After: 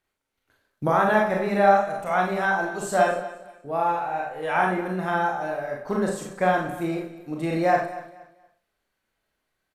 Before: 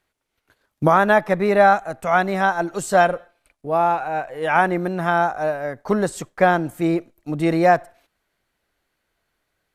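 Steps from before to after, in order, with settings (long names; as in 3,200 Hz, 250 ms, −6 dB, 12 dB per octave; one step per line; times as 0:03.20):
repeating echo 235 ms, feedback 27%, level −16 dB
four-comb reverb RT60 0.4 s, combs from 29 ms, DRR −1 dB
level −8 dB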